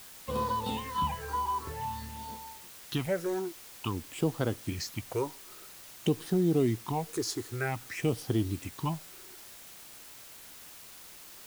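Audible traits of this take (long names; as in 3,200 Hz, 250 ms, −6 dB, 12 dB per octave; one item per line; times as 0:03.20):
phaser sweep stages 6, 0.51 Hz, lowest notch 160–2,300 Hz
a quantiser's noise floor 8 bits, dither triangular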